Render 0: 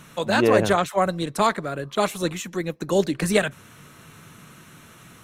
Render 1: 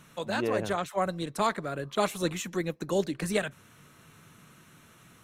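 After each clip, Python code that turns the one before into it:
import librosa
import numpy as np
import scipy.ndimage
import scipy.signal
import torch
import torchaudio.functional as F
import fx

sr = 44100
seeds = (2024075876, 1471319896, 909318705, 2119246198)

y = fx.rider(x, sr, range_db=5, speed_s=0.5)
y = y * librosa.db_to_amplitude(-7.5)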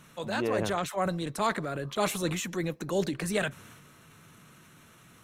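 y = fx.transient(x, sr, attack_db=-3, sustain_db=6)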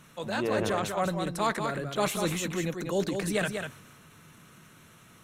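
y = x + 10.0 ** (-6.0 / 20.0) * np.pad(x, (int(194 * sr / 1000.0), 0))[:len(x)]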